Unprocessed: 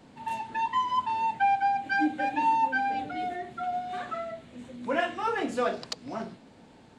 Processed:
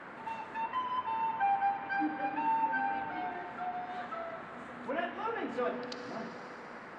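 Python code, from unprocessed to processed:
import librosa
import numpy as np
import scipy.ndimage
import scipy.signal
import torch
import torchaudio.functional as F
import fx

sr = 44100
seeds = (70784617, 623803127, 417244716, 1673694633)

y = fx.rev_fdn(x, sr, rt60_s=3.5, lf_ratio=1.0, hf_ratio=0.95, size_ms=36.0, drr_db=7.5)
y = fx.env_lowpass_down(y, sr, base_hz=3000.0, full_db=-25.5)
y = fx.dmg_noise_band(y, sr, seeds[0], low_hz=190.0, high_hz=1800.0, level_db=-40.0)
y = y * 10.0 ** (-7.5 / 20.0)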